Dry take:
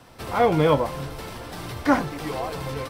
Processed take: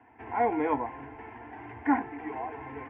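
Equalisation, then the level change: cabinet simulation 130–2000 Hz, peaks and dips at 170 Hz -10 dB, 370 Hz -8 dB, 590 Hz -6 dB, 1.5 kHz -4 dB; static phaser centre 820 Hz, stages 8; -1.0 dB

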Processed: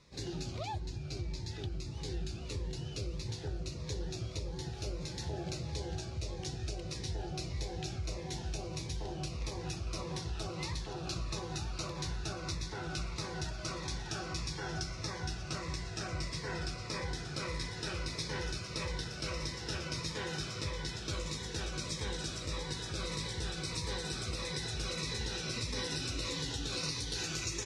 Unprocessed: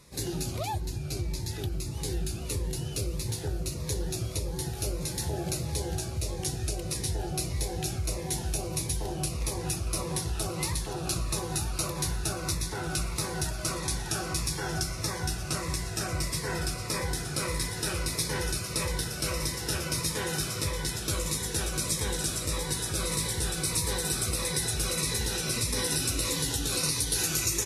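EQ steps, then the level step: distance through air 140 m; peaking EQ 5.6 kHz +6.5 dB 2 oct; -6.5 dB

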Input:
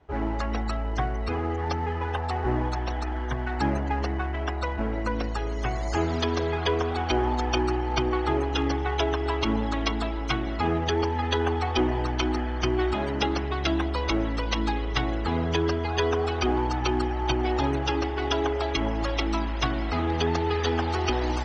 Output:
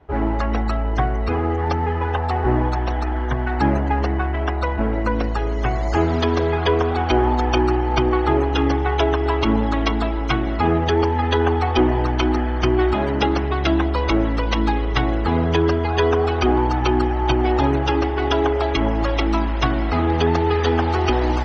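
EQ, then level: low-pass 2.4 kHz 6 dB/octave; +7.5 dB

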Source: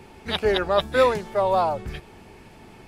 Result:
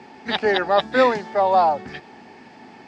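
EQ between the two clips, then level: cabinet simulation 180–6800 Hz, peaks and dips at 250 Hz +9 dB, 800 Hz +9 dB, 1.8 kHz +8 dB, 4.8 kHz +5 dB; 0.0 dB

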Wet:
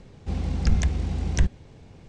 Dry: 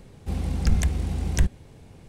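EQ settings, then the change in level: low-pass 7.1 kHz 24 dB/octave; 0.0 dB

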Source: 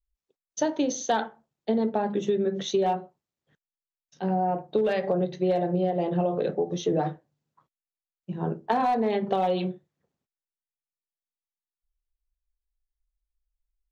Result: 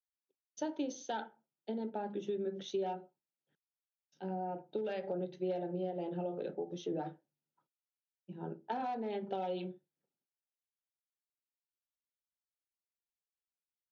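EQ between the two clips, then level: Butterworth band-stop 1.1 kHz, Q 6.1; cabinet simulation 240–5300 Hz, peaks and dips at 240 Hz -3 dB, 460 Hz -6 dB, 680 Hz -7 dB, 1.1 kHz -6 dB, 1.9 kHz -7 dB, 4.1 kHz -5 dB; peaking EQ 2.6 kHz -3 dB 2 oct; -7.5 dB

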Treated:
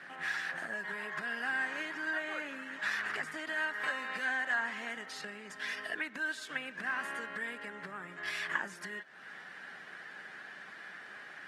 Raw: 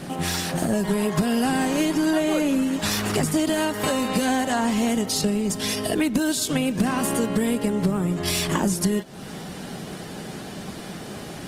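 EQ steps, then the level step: band-pass filter 1.7 kHz, Q 4.8; +2.0 dB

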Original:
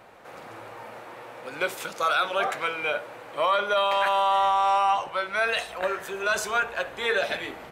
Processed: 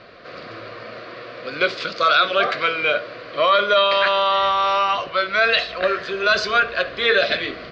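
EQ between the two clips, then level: Butterworth band-stop 860 Hz, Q 2.7; resonant low-pass 4.6 kHz, resonance Q 5.7; distance through air 170 m; +8.0 dB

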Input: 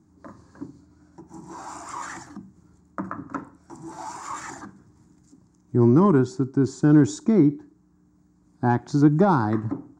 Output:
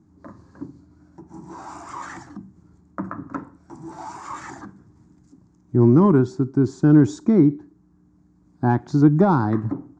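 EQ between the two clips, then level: distance through air 69 m; bass shelf 410 Hz +3.5 dB; 0.0 dB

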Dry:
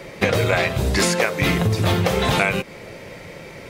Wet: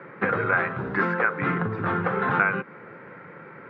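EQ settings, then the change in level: high-pass 130 Hz 24 dB/octave; four-pole ladder low-pass 1.6 kHz, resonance 65%; peaking EQ 630 Hz -9.5 dB 0.35 oct; +5.5 dB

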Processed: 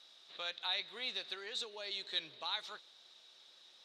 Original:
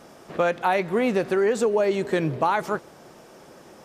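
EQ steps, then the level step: band-pass filter 3.8 kHz, Q 13; +11.0 dB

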